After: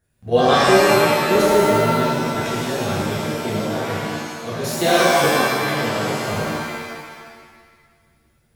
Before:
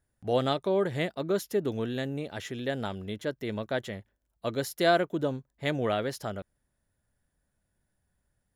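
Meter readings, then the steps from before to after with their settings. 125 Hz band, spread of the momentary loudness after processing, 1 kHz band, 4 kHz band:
+10.5 dB, 13 LU, +15.5 dB, +14.0 dB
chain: output level in coarse steps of 13 dB
regular buffer underruns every 0.83 s, samples 1,024, repeat, from 0:00.50
reverb with rising layers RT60 1.6 s, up +7 semitones, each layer −2 dB, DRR −9.5 dB
level +4.5 dB

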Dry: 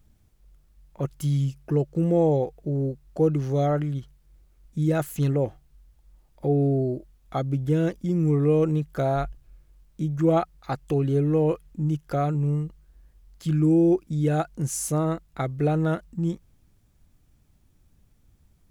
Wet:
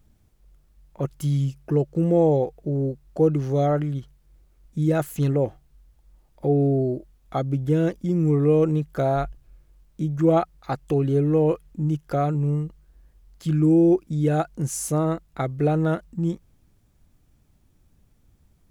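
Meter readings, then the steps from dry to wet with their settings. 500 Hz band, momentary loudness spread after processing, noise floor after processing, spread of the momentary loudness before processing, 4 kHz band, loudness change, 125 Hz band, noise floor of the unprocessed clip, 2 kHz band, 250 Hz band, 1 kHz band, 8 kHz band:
+2.5 dB, 11 LU, −61 dBFS, 10 LU, can't be measured, +2.0 dB, +1.0 dB, −61 dBFS, +1.0 dB, +2.0 dB, +2.0 dB, 0.0 dB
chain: parametric band 470 Hz +2.5 dB 3 octaves

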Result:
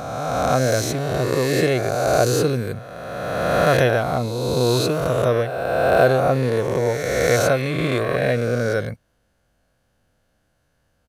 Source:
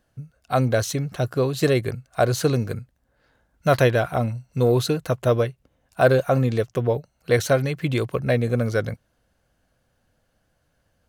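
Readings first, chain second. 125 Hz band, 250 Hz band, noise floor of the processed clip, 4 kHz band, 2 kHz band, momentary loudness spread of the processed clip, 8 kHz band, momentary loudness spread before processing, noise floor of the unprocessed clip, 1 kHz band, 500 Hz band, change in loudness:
0.0 dB, +1.5 dB, −67 dBFS, +5.0 dB, +5.0 dB, 8 LU, +5.5 dB, 9 LU, −70 dBFS, +5.5 dB, +3.5 dB, +2.5 dB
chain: peak hold with a rise ahead of every peak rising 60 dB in 2.16 s
downsampling to 32,000 Hz
level −2 dB

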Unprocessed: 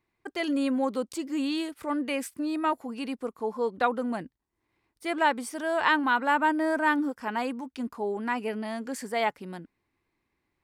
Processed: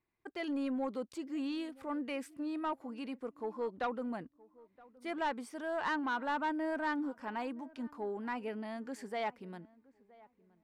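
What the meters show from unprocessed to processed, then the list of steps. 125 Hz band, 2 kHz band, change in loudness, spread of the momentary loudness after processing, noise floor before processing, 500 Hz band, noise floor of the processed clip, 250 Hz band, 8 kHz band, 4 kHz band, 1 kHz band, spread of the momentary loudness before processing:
can't be measured, −11.5 dB, −9.5 dB, 9 LU, −80 dBFS, −8.5 dB, −74 dBFS, −8.5 dB, −15.0 dB, −11.5 dB, −10.0 dB, 11 LU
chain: soft clipping −19.5 dBFS, distortion −15 dB
high-shelf EQ 5,900 Hz −11.5 dB
on a send: feedback echo with a low-pass in the loop 970 ms, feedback 24%, low-pass 1,300 Hz, level −22 dB
on the sum: level −7.5 dB

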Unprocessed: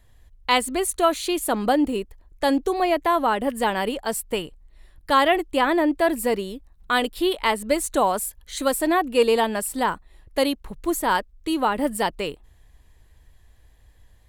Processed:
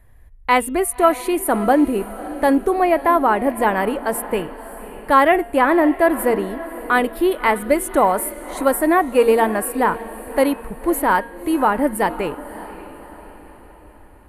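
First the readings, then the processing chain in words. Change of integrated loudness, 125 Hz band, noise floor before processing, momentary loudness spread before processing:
+4.5 dB, can't be measured, −55 dBFS, 10 LU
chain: linear-phase brick-wall low-pass 14,000 Hz
flat-topped bell 4,800 Hz −13 dB
hum removal 233.1 Hz, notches 16
on a send: feedback delay with all-pass diffusion 580 ms, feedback 47%, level −15 dB
on the sum: level +5 dB

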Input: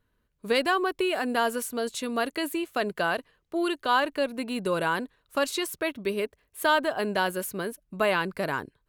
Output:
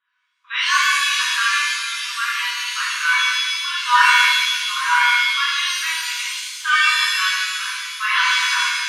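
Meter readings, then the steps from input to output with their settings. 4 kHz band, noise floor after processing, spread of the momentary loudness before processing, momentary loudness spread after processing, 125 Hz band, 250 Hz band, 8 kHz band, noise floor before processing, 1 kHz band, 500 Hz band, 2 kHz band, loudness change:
+16.5 dB, −55 dBFS, 8 LU, 9 LU, below −40 dB, below −40 dB, +14.5 dB, −74 dBFS, +8.5 dB, below −40 dB, +14.5 dB, +11.0 dB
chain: brick-wall band-pass 960–3,900 Hz
reverb with rising layers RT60 1.4 s, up +7 semitones, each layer −2 dB, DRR −9 dB
level +1 dB

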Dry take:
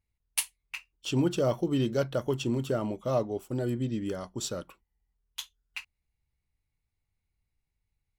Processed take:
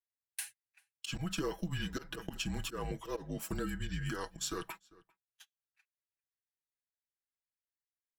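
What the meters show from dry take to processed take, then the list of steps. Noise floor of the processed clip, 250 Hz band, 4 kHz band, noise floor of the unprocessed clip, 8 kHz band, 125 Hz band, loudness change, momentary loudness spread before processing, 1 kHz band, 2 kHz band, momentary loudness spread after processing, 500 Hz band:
below −85 dBFS, −10.0 dB, −3.5 dB, −84 dBFS, −6.0 dB, −8.5 dB, −9.0 dB, 15 LU, −6.0 dB, −2.0 dB, 8 LU, −13.0 dB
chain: high-pass filter 78 Hz
frequency shifter −160 Hz
spectral tilt +1.5 dB per octave
volume swells 273 ms
comb filter 6.1 ms, depth 58%
noise gate −53 dBFS, range −30 dB
parametric band 1,600 Hz +14 dB 0.37 octaves
slap from a distant wall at 68 metres, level −29 dB
downward compressor 5 to 1, threshold −42 dBFS, peak gain reduction 17.5 dB
level +7 dB

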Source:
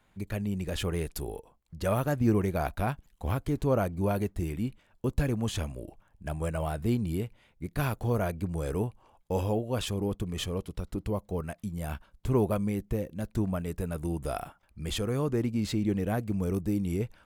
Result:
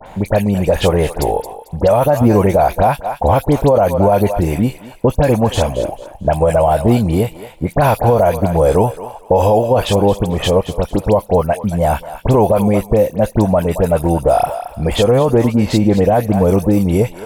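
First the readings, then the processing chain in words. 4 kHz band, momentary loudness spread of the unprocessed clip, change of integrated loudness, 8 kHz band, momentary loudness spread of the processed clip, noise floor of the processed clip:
+13.5 dB, 10 LU, +17.0 dB, +13.0 dB, 7 LU, −38 dBFS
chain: flat-topped bell 690 Hz +11.5 dB 1.2 octaves
all-pass dispersion highs, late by 62 ms, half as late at 2,200 Hz
on a send: feedback echo with a high-pass in the loop 222 ms, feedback 21%, high-pass 640 Hz, level −13.5 dB
on the sum: boost into a limiter +17 dB
multiband upward and downward compressor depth 40%
level −2 dB

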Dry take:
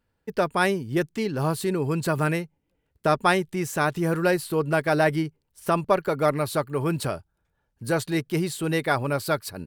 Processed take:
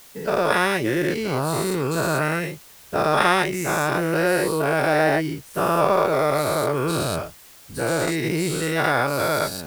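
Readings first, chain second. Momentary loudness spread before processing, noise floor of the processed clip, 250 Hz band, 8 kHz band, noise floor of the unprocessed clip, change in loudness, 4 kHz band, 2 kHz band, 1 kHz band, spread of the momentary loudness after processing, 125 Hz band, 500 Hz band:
7 LU, −47 dBFS, +1.5 dB, +6.0 dB, −76 dBFS, +3.5 dB, +5.5 dB, +5.0 dB, +4.5 dB, 8 LU, +0.5 dB, +3.5 dB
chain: every bin's largest magnitude spread in time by 240 ms
background noise white −44 dBFS
level −3.5 dB

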